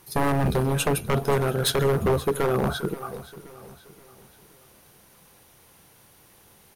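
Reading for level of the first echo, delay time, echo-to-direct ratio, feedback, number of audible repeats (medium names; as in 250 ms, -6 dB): -17.0 dB, 527 ms, -16.0 dB, 44%, 3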